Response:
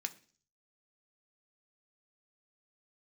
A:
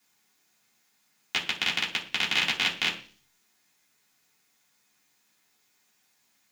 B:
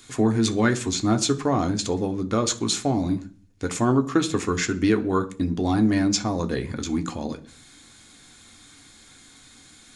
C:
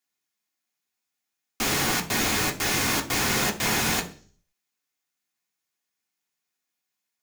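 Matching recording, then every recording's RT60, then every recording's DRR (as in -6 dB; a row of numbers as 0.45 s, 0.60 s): B; 0.45 s, 0.45 s, 0.45 s; -6.5 dB, 6.0 dB, 1.0 dB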